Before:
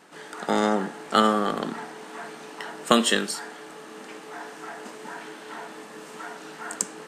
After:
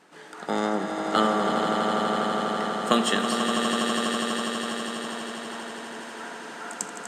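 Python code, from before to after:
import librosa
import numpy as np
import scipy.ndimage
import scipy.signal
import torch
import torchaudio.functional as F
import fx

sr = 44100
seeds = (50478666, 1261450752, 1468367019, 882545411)

y = fx.high_shelf(x, sr, hz=11000.0, db=-6.5)
y = fx.echo_swell(y, sr, ms=82, loudest=8, wet_db=-8.0)
y = y * librosa.db_to_amplitude(-3.5)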